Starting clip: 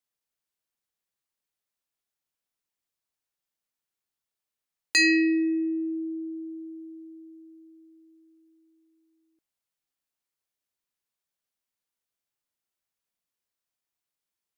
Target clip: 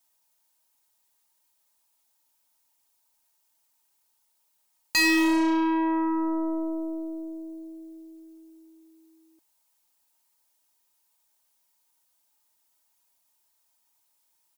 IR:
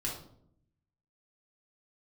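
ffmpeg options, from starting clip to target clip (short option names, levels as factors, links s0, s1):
-af "highshelf=f=4500:g=12,aecho=1:1:3.2:0.97,asoftclip=type=tanh:threshold=0.0944,aeval=exprs='0.0944*(cos(1*acos(clip(val(0)/0.0944,-1,1)))-cos(1*PI/2))+0.0119*(cos(5*acos(clip(val(0)/0.0944,-1,1)))-cos(5*PI/2))+0.00944*(cos(8*acos(clip(val(0)/0.0944,-1,1)))-cos(8*PI/2))':c=same,equalizer=f=860:t=o:w=0.52:g=13"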